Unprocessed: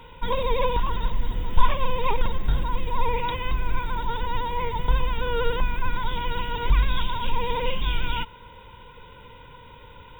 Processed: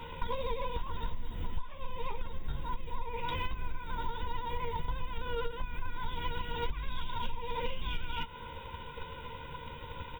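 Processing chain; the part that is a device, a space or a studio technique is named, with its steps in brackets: doubling 13 ms -5.5 dB; drum-bus smash (transient shaper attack +8 dB, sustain +1 dB; compression 12:1, threshold -28 dBFS, peak gain reduction 30.5 dB; saturation -20.5 dBFS, distortion -24 dB)

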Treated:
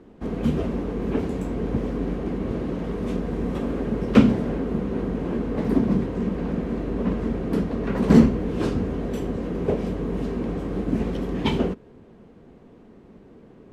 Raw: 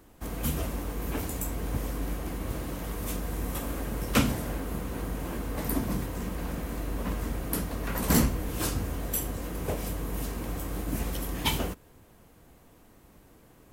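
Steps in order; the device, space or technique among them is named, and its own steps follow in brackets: inside a cardboard box (low-pass 3.6 kHz 12 dB/octave; small resonant body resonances 220/390 Hz, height 13 dB, ringing for 25 ms)

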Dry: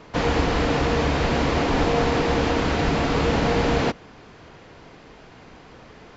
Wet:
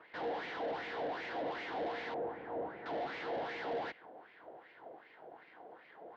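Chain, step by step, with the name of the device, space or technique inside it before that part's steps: wah-wah guitar rig (wah-wah 2.6 Hz 590–2300 Hz, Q 3.6; valve stage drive 42 dB, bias 0.6; cabinet simulation 96–3900 Hz, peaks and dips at 110 Hz -3 dB, 330 Hz +8 dB, 480 Hz +5 dB, 740 Hz +4 dB, 1.2 kHz -8 dB, 2.5 kHz -7 dB); 2.14–2.86 s: Bessel low-pass 900 Hz, order 2; trim +3 dB

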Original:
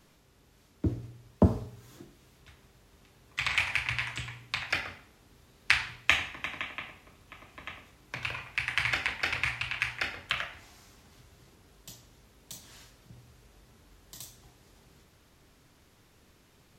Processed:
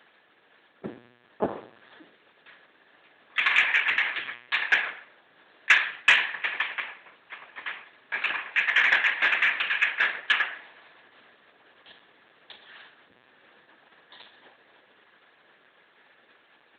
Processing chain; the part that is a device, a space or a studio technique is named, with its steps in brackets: talking toy (LPC vocoder at 8 kHz; high-pass 470 Hz 12 dB/octave; peaking EQ 1.7 kHz +10 dB 0.24 oct; saturation -12.5 dBFS, distortion -22 dB); trim +6 dB

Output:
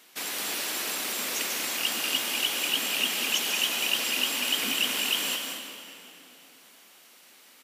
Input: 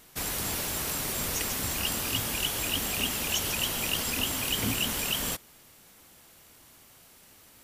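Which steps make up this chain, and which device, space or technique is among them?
stadium PA (high-pass 230 Hz 24 dB/octave; peaking EQ 2.9 kHz +7 dB 2.1 oct; loudspeakers at several distances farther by 65 m -9 dB, 79 m -9 dB; reverberation RT60 3.0 s, pre-delay 76 ms, DRR 6 dB); trim -3.5 dB

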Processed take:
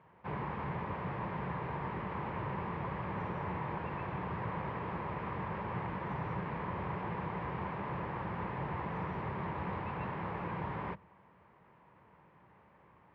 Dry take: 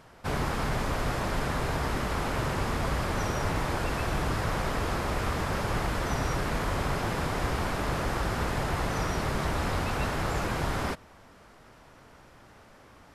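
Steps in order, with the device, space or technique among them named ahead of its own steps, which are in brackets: sub-octave bass pedal (octave divider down 2 oct, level +2 dB; cabinet simulation 86–2400 Hz, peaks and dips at 96 Hz -4 dB, 180 Hz +5 dB, 260 Hz -8 dB, 670 Hz -5 dB, 970 Hz +7 dB, 1.4 kHz -7 dB); trim -8 dB

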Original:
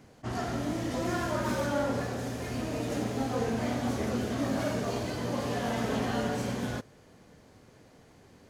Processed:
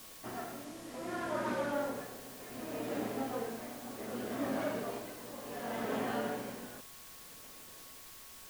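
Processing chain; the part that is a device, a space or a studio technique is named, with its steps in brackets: shortwave radio (band-pass 270–2900 Hz; tremolo 0.66 Hz, depth 71%; whistle 1.1 kHz -61 dBFS; white noise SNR 12 dB); bass shelf 85 Hz +9 dB; 0.64–1.73 s: low-pass 11 kHz 12 dB/octave; trim -3 dB

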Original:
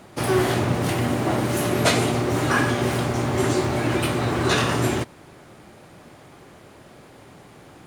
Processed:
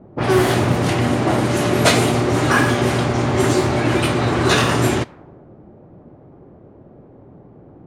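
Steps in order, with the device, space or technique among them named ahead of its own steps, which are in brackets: cassette deck with a dynamic noise filter (white noise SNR 32 dB; level-controlled noise filter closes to 440 Hz, open at -17 dBFS); trim +5 dB

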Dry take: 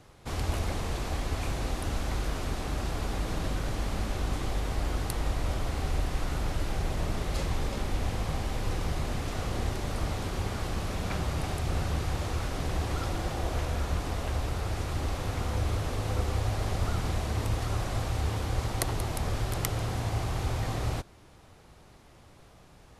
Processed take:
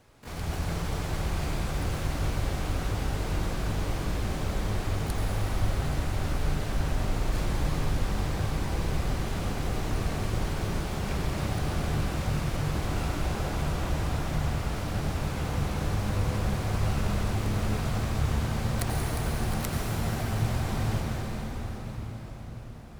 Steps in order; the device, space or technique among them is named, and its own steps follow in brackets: shimmer-style reverb (harmony voices +12 st -4 dB; reverberation RT60 6.2 s, pre-delay 78 ms, DRR -3 dB); trim -5.5 dB

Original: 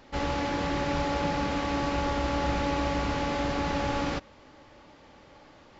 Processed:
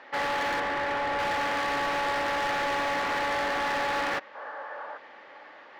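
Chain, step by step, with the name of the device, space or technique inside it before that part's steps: megaphone (band-pass 580–2700 Hz; peaking EQ 1.8 kHz +8 dB 0.34 oct; hard clipper -32.5 dBFS, distortion -9 dB); 0.60–1.19 s: treble shelf 4.5 kHz -12 dB; 4.35–4.97 s: time-frequency box 410–1800 Hz +11 dB; trim +7 dB

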